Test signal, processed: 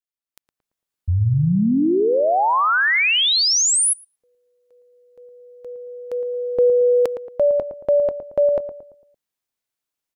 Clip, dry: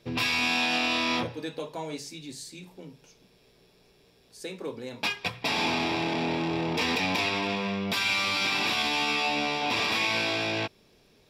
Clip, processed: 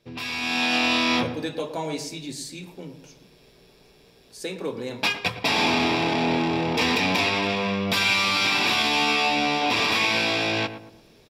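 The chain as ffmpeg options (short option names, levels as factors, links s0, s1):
-filter_complex "[0:a]asplit=2[s0][s1];[s1]adelay=113,lowpass=f=1200:p=1,volume=0.335,asplit=2[s2][s3];[s3]adelay=113,lowpass=f=1200:p=1,volume=0.43,asplit=2[s4][s5];[s5]adelay=113,lowpass=f=1200:p=1,volume=0.43,asplit=2[s6][s7];[s7]adelay=113,lowpass=f=1200:p=1,volume=0.43,asplit=2[s8][s9];[s9]adelay=113,lowpass=f=1200:p=1,volume=0.43[s10];[s0][s2][s4][s6][s8][s10]amix=inputs=6:normalize=0,dynaudnorm=f=220:g=5:m=3.98,volume=0.501"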